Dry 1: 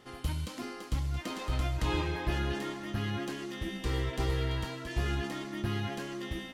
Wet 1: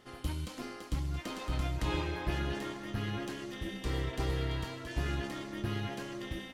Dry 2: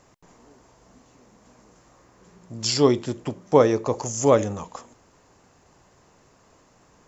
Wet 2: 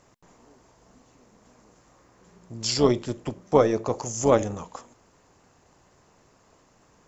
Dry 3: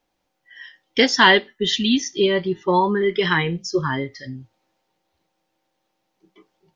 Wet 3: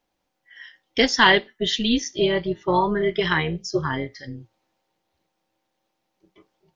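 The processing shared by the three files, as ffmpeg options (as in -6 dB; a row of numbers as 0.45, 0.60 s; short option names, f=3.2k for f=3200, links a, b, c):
-af "tremolo=f=230:d=0.519"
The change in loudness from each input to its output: -2.5, -2.5, -2.5 LU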